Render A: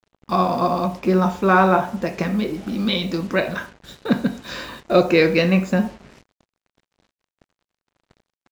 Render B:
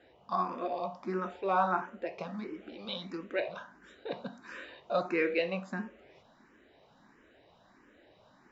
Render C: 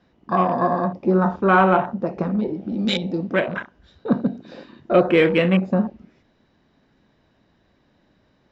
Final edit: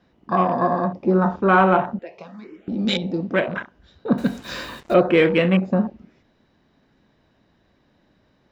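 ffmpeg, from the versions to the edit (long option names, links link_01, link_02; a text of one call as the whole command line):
ffmpeg -i take0.wav -i take1.wav -i take2.wav -filter_complex "[2:a]asplit=3[link_01][link_02][link_03];[link_01]atrim=end=1.992[link_04];[1:a]atrim=start=1.988:end=2.682[link_05];[link_02]atrim=start=2.678:end=4.182[link_06];[0:a]atrim=start=4.178:end=4.942[link_07];[link_03]atrim=start=4.938[link_08];[link_04][link_05]acrossfade=duration=0.004:curve1=hsin:curve2=hsin[link_09];[link_09][link_06]acrossfade=duration=0.004:curve1=hsin:curve2=hsin[link_10];[link_10][link_07]acrossfade=duration=0.004:curve1=hsin:curve2=hsin[link_11];[link_11][link_08]acrossfade=duration=0.004:curve1=hsin:curve2=hsin" out.wav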